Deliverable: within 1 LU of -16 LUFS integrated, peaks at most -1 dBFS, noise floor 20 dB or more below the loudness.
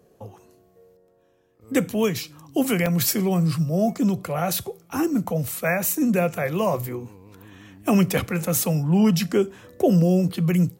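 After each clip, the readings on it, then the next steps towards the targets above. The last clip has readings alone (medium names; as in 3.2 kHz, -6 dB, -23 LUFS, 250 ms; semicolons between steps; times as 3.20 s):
dropouts 1; longest dropout 3.2 ms; loudness -22.5 LUFS; peak level -9.0 dBFS; loudness target -16.0 LUFS
-> interpolate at 2.86 s, 3.2 ms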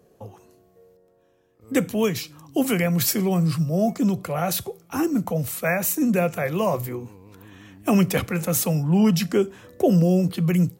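dropouts 0; loudness -22.5 LUFS; peak level -9.0 dBFS; loudness target -16.0 LUFS
-> trim +6.5 dB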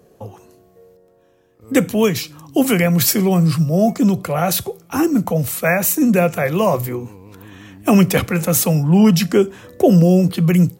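loudness -16.0 LUFS; peak level -2.5 dBFS; noise floor -54 dBFS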